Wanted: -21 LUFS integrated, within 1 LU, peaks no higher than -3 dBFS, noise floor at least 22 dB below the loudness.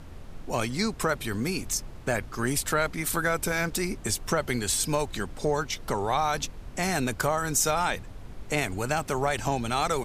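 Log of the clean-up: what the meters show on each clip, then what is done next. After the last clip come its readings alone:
noise floor -43 dBFS; noise floor target -50 dBFS; loudness -28.0 LUFS; peak level -10.5 dBFS; loudness target -21.0 LUFS
-> noise print and reduce 7 dB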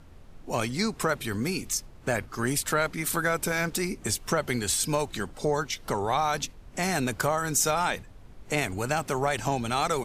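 noise floor -49 dBFS; noise floor target -50 dBFS
-> noise print and reduce 6 dB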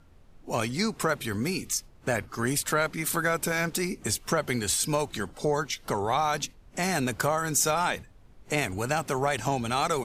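noise floor -54 dBFS; loudness -28.0 LUFS; peak level -10.5 dBFS; loudness target -21.0 LUFS
-> trim +7 dB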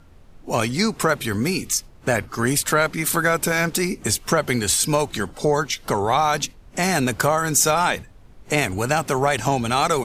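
loudness -21.0 LUFS; peak level -3.5 dBFS; noise floor -47 dBFS

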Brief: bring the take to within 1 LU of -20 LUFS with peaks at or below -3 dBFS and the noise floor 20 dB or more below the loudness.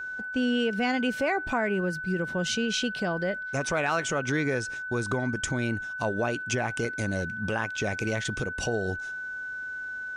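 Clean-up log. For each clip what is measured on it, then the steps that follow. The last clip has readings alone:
dropouts 1; longest dropout 3.7 ms; steady tone 1.5 kHz; tone level -33 dBFS; loudness -29.0 LUFS; peak level -13.0 dBFS; loudness target -20.0 LUFS
-> interpolate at 6.85 s, 3.7 ms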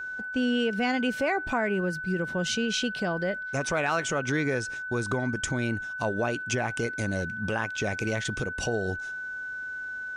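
dropouts 0; steady tone 1.5 kHz; tone level -33 dBFS
-> band-stop 1.5 kHz, Q 30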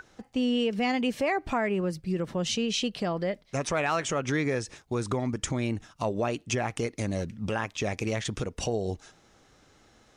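steady tone not found; loudness -30.0 LUFS; peak level -14.0 dBFS; loudness target -20.0 LUFS
-> trim +10 dB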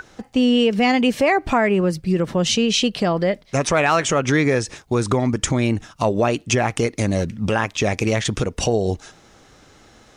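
loudness -20.0 LUFS; peak level -4.0 dBFS; noise floor -51 dBFS

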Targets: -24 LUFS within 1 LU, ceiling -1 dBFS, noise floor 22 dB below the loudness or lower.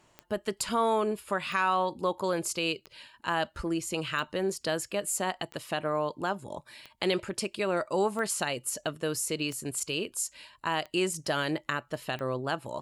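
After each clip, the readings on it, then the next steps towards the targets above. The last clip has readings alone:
clicks found 10; loudness -31.0 LUFS; peak level -12.5 dBFS; loudness target -24.0 LUFS
-> de-click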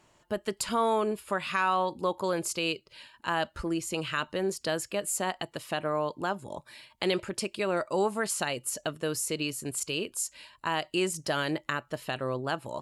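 clicks found 0; loudness -31.0 LUFS; peak level -12.5 dBFS; loudness target -24.0 LUFS
-> trim +7 dB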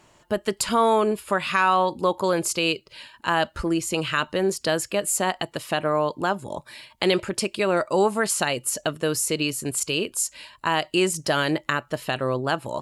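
loudness -24.0 LUFS; peak level -5.5 dBFS; noise floor -58 dBFS

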